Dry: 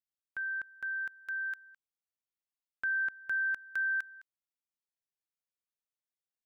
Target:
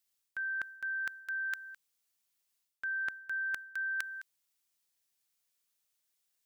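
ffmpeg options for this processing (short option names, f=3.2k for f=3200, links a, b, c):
-af "highshelf=f=2.3k:g=11,areverse,acompressor=threshold=-40dB:ratio=6,areverse,volume=5dB"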